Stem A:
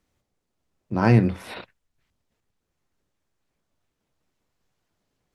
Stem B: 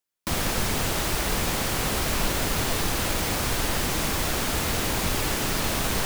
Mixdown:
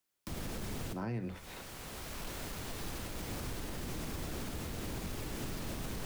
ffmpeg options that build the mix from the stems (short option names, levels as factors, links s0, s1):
-filter_complex "[0:a]agate=range=0.141:threshold=0.0316:ratio=16:detection=peak,highpass=f=290:p=1,dynaudnorm=f=240:g=11:m=3.76,volume=0.841,asplit=2[s0][s1];[1:a]asoftclip=type=hard:threshold=0.1,volume=1.19[s2];[s1]apad=whole_len=267068[s3];[s2][s3]sidechaincompress=threshold=0.00251:ratio=3:attack=39:release=1350[s4];[s0][s4]amix=inputs=2:normalize=0,acrossover=split=130|440[s5][s6][s7];[s5]acompressor=threshold=0.02:ratio=4[s8];[s6]acompressor=threshold=0.0141:ratio=4[s9];[s7]acompressor=threshold=0.00891:ratio=4[s10];[s8][s9][s10]amix=inputs=3:normalize=0,alimiter=level_in=2.11:limit=0.0631:level=0:latency=1:release=181,volume=0.473"